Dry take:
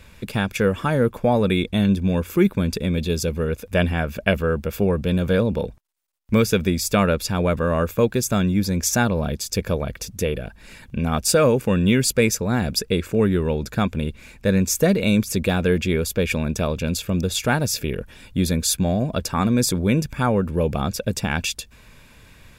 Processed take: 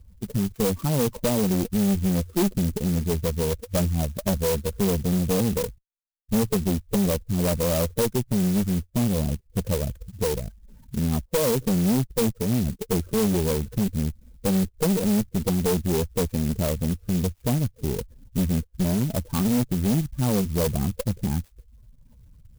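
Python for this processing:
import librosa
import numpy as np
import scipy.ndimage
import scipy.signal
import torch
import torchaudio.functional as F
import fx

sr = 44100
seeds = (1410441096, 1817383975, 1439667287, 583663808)

y = fx.spec_expand(x, sr, power=2.3)
y = fx.env_lowpass_down(y, sr, base_hz=490.0, full_db=-14.5)
y = scipy.signal.sosfilt(scipy.signal.butter(4, 1100.0, 'lowpass', fs=sr, output='sos'), y)
y = fx.tube_stage(y, sr, drive_db=20.0, bias=0.65)
y = fx.clock_jitter(y, sr, seeds[0], jitter_ms=0.13)
y = F.gain(torch.from_numpy(y), 2.5).numpy()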